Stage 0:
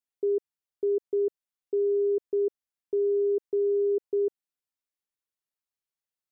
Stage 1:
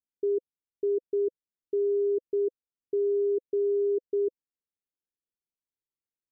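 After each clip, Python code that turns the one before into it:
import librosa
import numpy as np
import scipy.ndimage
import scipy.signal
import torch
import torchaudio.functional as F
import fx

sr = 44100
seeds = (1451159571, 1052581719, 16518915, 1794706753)

y = scipy.signal.sosfilt(scipy.signal.cheby1(5, 1.0, 510.0, 'lowpass', fs=sr, output='sos'), x)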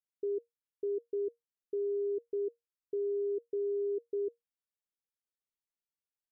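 y = fx.comb_fb(x, sr, f0_hz=470.0, decay_s=0.16, harmonics='all', damping=0.0, mix_pct=60)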